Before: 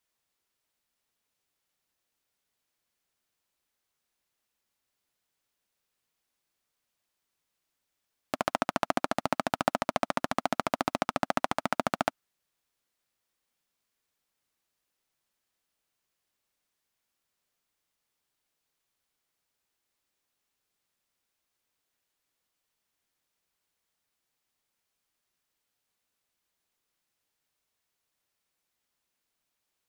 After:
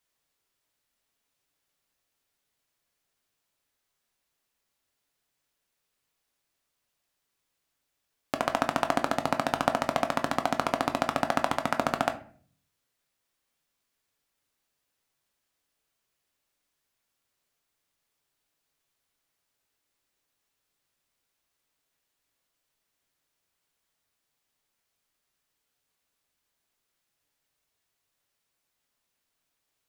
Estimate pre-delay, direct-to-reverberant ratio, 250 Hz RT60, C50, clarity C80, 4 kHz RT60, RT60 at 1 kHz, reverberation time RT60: 7 ms, 6.5 dB, 0.70 s, 14.0 dB, 18.5 dB, 0.30 s, 0.40 s, 0.50 s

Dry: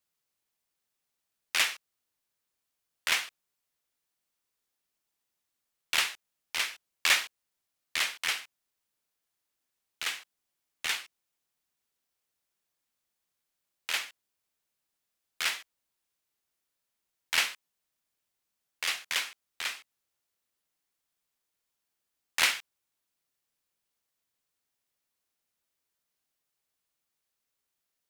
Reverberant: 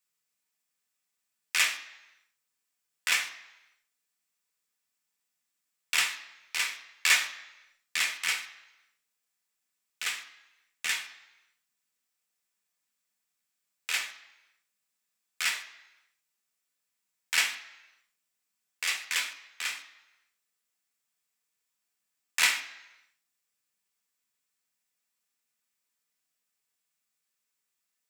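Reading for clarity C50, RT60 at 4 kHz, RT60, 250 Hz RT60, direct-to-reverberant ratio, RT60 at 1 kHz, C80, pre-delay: 11.5 dB, 0.90 s, 1.0 s, 0.85 s, 4.0 dB, 1.0 s, 14.0 dB, 3 ms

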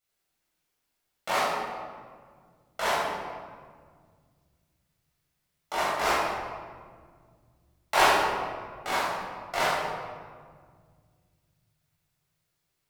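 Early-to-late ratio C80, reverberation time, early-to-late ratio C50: 1.0 dB, 1.8 s, −2.0 dB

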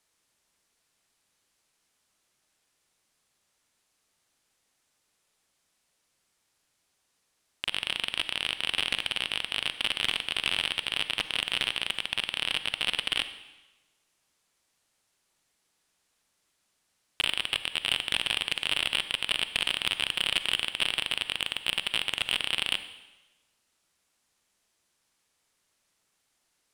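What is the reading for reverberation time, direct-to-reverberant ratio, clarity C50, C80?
1.1 s, 11.5 dB, 12.0 dB, 13.5 dB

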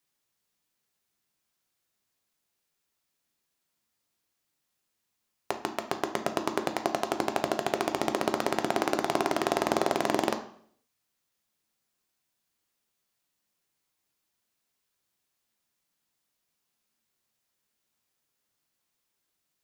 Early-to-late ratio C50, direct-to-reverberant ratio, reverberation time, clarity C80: 11.0 dB, 6.0 dB, 0.60 s, 15.0 dB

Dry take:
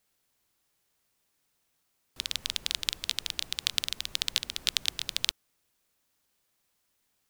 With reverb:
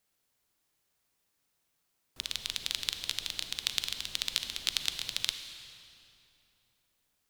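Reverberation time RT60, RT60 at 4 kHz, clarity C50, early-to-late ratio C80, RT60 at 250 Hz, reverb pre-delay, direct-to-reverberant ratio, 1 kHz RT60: 2.8 s, 2.2 s, 8.0 dB, 9.0 dB, 3.3 s, 34 ms, 7.5 dB, 2.7 s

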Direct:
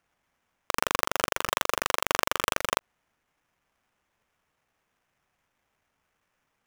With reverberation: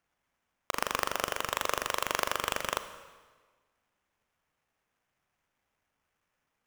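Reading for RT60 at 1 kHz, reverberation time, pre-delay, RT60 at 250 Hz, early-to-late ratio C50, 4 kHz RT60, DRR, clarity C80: 1.4 s, 1.4 s, 30 ms, 1.5 s, 11.0 dB, 1.3 s, 10.5 dB, 12.5 dB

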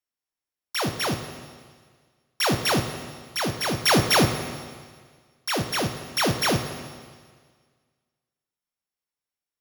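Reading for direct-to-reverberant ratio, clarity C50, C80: 6.5 dB, 8.0 dB, 9.5 dB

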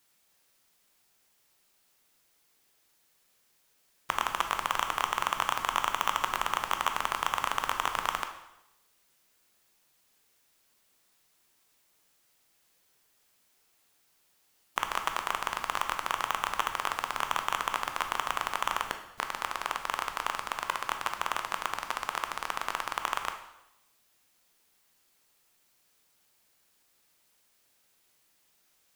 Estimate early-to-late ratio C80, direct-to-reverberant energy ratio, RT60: 11.5 dB, 5.5 dB, 0.85 s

